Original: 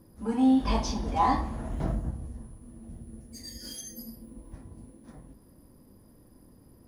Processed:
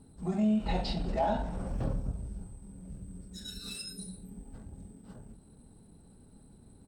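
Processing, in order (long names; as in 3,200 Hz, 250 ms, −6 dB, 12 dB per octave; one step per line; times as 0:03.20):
pitch shifter −3.5 semitones
downward compressor 2 to 1, threshold −29 dBFS, peak gain reduction 6 dB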